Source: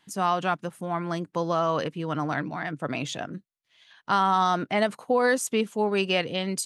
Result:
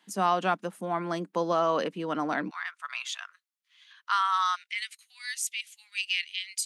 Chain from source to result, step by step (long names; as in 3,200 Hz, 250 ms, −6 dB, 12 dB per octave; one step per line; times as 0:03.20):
elliptic high-pass filter 190 Hz, stop band 80 dB, from 0:02.49 1,100 Hz, from 0:04.55 2,100 Hz